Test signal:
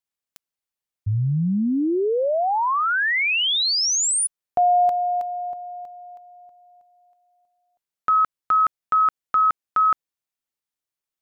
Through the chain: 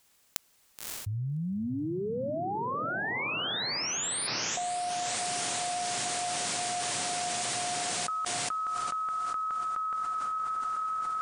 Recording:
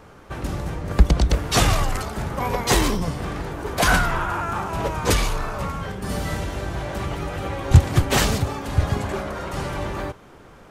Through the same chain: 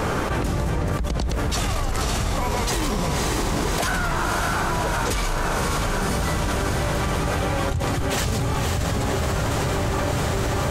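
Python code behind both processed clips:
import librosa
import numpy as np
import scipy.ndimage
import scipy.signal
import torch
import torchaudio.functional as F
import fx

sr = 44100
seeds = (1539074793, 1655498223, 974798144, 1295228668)

y = fx.peak_eq(x, sr, hz=7600.0, db=2.5, octaves=0.77)
y = fx.echo_diffused(y, sr, ms=577, feedback_pct=69, wet_db=-6.5)
y = fx.env_flatten(y, sr, amount_pct=100)
y = y * 10.0 ** (-17.0 / 20.0)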